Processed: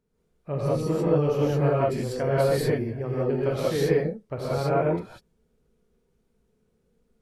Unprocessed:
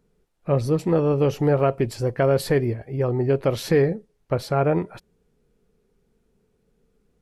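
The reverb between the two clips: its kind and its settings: non-linear reverb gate 0.22 s rising, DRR -7 dB; gain -10.5 dB

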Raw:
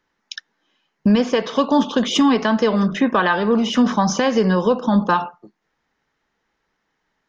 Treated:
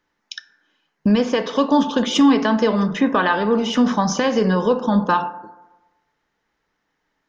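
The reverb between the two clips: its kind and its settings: FDN reverb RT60 1.1 s, low-frequency decay 0.9×, high-frequency decay 0.35×, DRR 11 dB; gain -1 dB

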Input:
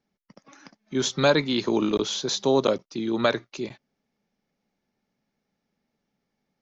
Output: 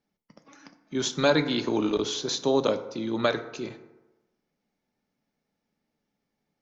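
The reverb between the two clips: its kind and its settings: FDN reverb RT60 1.1 s, low-frequency decay 0.8×, high-frequency decay 0.45×, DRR 8.5 dB; gain -2.5 dB

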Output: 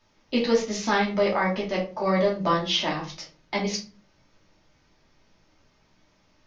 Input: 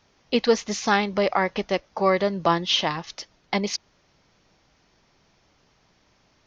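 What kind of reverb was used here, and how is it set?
shoebox room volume 200 m³, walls furnished, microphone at 2.7 m; gain -7 dB

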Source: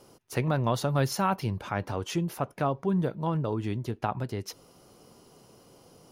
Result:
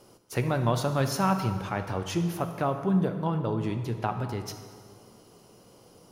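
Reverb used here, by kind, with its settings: plate-style reverb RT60 1.9 s, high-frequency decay 0.75×, DRR 6.5 dB

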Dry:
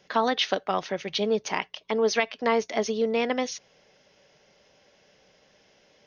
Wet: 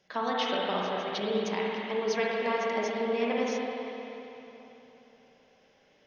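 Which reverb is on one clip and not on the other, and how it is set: spring tank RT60 3.4 s, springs 38/54/59 ms, chirp 70 ms, DRR -4.5 dB; gain -9 dB

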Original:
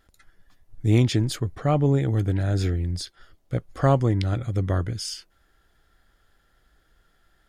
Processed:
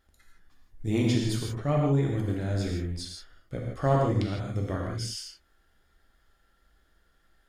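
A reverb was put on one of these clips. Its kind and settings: non-linear reverb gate 0.19 s flat, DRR -1.5 dB; gain -7 dB

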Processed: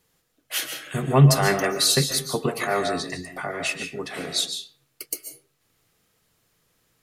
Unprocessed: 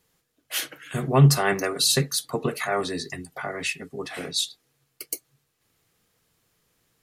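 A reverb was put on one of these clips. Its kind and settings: digital reverb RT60 0.42 s, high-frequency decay 0.7×, pre-delay 0.1 s, DRR 6 dB; gain +1 dB

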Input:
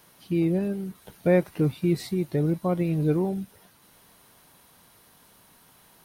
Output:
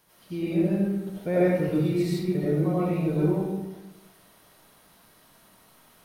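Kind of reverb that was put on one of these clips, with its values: digital reverb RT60 1.1 s, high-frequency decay 0.6×, pre-delay 50 ms, DRR -9 dB; gain -8.5 dB

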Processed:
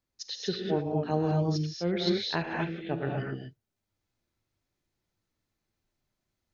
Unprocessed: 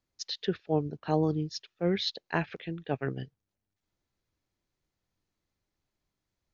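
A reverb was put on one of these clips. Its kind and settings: non-linear reverb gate 0.27 s rising, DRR -1 dB; gain -2 dB

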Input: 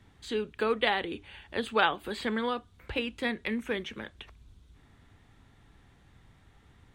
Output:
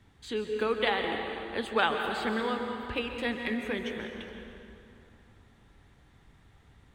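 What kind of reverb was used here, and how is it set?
plate-style reverb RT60 2.9 s, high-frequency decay 0.65×, pre-delay 0.115 s, DRR 3.5 dB; gain -1.5 dB

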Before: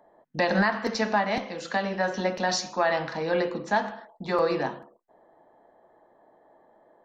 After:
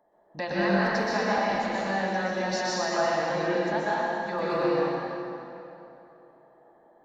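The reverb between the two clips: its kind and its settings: plate-style reverb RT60 3 s, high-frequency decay 0.7×, pre-delay 0.11 s, DRR -7.5 dB; gain -8.5 dB

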